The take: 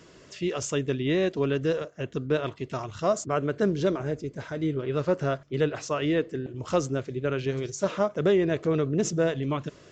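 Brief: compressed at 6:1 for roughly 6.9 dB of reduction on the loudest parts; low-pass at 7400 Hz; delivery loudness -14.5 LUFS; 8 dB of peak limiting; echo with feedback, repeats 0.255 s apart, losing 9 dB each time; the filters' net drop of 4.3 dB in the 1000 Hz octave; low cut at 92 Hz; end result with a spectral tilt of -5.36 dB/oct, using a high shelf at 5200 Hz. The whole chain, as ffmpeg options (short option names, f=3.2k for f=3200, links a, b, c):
-af "highpass=92,lowpass=7.4k,equalizer=f=1k:t=o:g=-6.5,highshelf=f=5.2k:g=4.5,acompressor=threshold=-27dB:ratio=6,alimiter=level_in=1dB:limit=-24dB:level=0:latency=1,volume=-1dB,aecho=1:1:255|510|765|1020:0.355|0.124|0.0435|0.0152,volume=20.5dB"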